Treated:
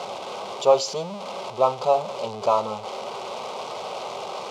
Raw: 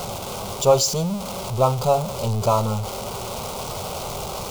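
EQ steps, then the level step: BPF 380–3800 Hz; notch 1400 Hz, Q 13; 0.0 dB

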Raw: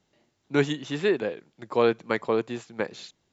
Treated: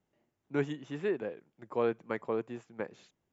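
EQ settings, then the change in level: high shelf 2700 Hz -8 dB; bell 4100 Hz -8.5 dB 0.52 oct; -8.0 dB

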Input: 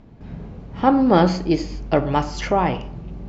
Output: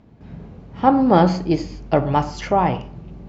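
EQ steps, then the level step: HPF 50 Hz; dynamic EQ 810 Hz, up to +5 dB, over -29 dBFS, Q 1.2; dynamic EQ 110 Hz, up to +6 dB, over -32 dBFS, Q 0.7; -2.5 dB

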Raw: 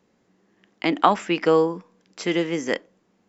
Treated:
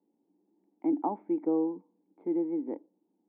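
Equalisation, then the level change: vocal tract filter u; HPF 170 Hz; low shelf 230 Hz -10.5 dB; +3.0 dB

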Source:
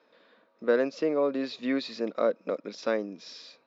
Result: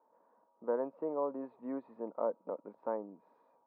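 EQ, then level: ladder low-pass 980 Hz, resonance 75%; 0.0 dB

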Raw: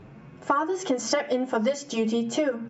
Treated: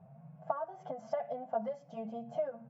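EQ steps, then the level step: double band-pass 330 Hz, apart 2.1 oct; 0.0 dB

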